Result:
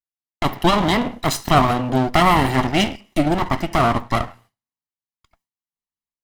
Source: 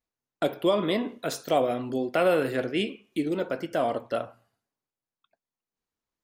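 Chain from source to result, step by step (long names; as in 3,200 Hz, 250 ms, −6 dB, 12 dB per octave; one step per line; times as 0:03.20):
lower of the sound and its delayed copy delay 1 ms
noise gate with hold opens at −57 dBFS
automatic gain control gain up to 7.5 dB
level +4.5 dB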